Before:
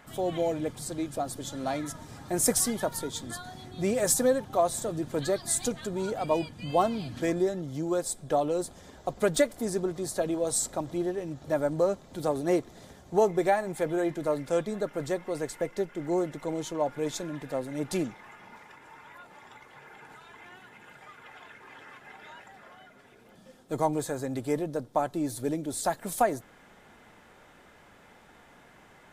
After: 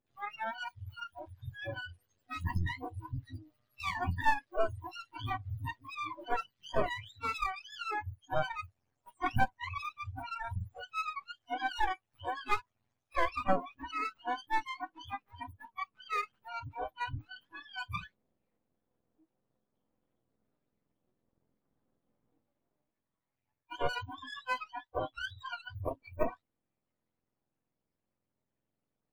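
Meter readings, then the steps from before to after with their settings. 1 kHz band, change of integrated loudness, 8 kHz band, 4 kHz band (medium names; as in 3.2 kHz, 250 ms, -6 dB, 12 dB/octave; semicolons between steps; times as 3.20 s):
-2.0 dB, -8.0 dB, -28.0 dB, -4.0 dB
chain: spectrum inverted on a logarithmic axis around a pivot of 670 Hz; treble shelf 6.1 kHz -2.5 dB; half-wave rectifier; spectral noise reduction 29 dB; peaking EQ 270 Hz -2.5 dB 2.1 oct; trim +1.5 dB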